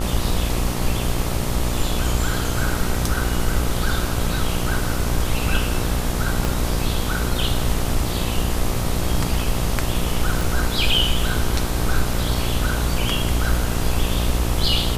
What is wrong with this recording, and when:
buzz 60 Hz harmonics 22 -25 dBFS
6.45 pop
10.41 pop

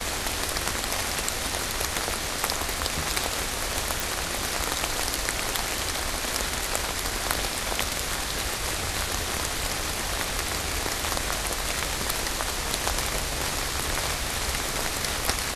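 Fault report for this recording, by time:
4 pop

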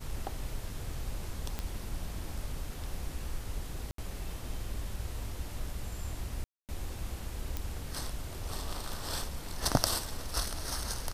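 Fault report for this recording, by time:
1.59 pop -20 dBFS
3.91–3.98 gap 73 ms
6.44–6.69 gap 0.248 s
7.57 pop

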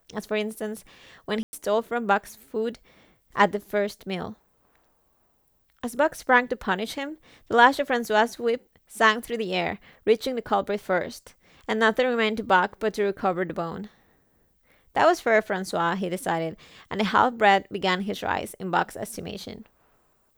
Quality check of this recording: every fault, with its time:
1.43–1.53 gap 0.1 s

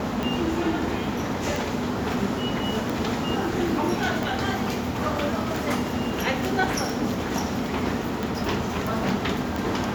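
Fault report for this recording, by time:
tick

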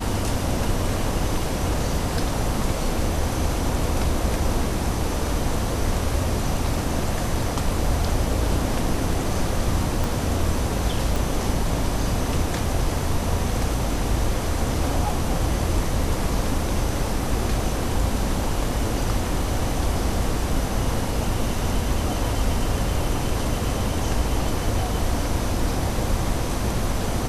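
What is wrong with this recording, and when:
10.04 pop
11.16 pop

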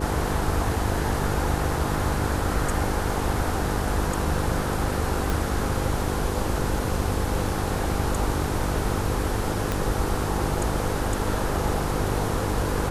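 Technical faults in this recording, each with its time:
buzz 50 Hz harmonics 10 -30 dBFS
5.3 pop
9.72 pop

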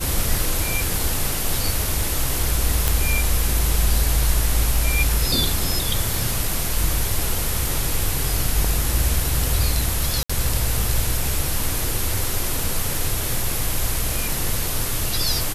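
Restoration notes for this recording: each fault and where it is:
2.88 pop
10.23–10.29 gap 65 ms

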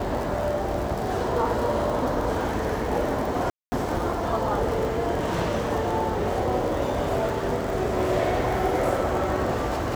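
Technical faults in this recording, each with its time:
crackle 44/s -28 dBFS
3.5–3.72 gap 0.22 s

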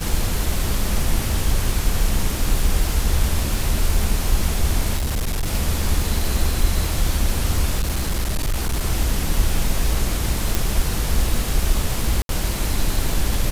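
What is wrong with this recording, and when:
crackle 290/s -25 dBFS
4.96–5.48 clipped -18.5 dBFS
7.79–8.83 clipped -17 dBFS
10.55 pop
12.22–12.29 gap 72 ms

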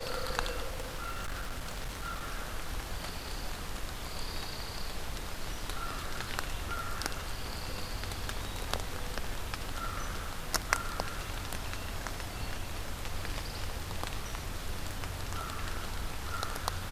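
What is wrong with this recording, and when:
crackle 18/s -42 dBFS
0.67–2.34 clipped -32.5 dBFS

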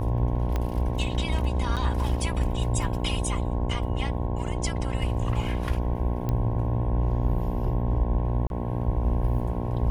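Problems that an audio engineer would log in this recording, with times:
buzz 60 Hz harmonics 18 -30 dBFS
0.56 pop -15 dBFS
1.76–1.77 gap 7.5 ms
6.29 pop -16 dBFS
8.47–8.5 gap 31 ms

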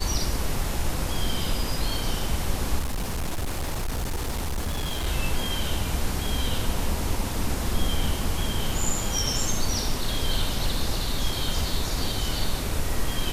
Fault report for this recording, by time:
2.79–5.07 clipped -24 dBFS

